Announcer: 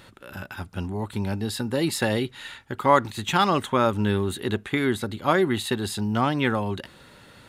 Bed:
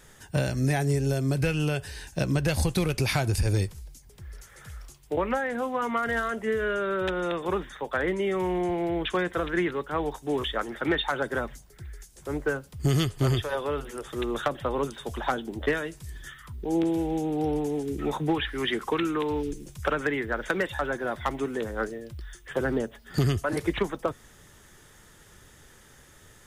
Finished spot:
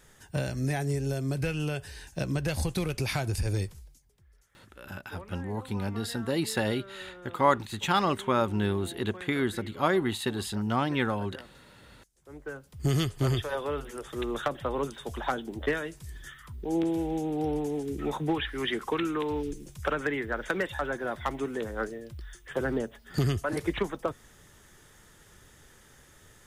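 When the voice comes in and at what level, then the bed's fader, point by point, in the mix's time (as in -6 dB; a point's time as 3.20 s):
4.55 s, -4.5 dB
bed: 3.75 s -4.5 dB
4.25 s -19 dB
12.19 s -19 dB
12.87 s -2.5 dB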